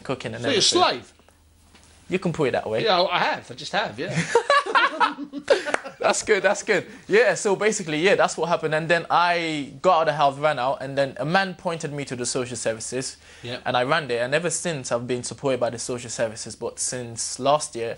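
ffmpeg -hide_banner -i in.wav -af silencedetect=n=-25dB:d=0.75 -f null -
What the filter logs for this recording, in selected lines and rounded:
silence_start: 0.97
silence_end: 2.11 | silence_duration: 1.14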